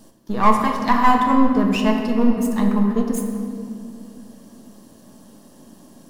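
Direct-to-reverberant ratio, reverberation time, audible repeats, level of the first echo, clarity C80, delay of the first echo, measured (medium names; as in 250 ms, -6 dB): 2.0 dB, 2.5 s, no echo, no echo, 5.0 dB, no echo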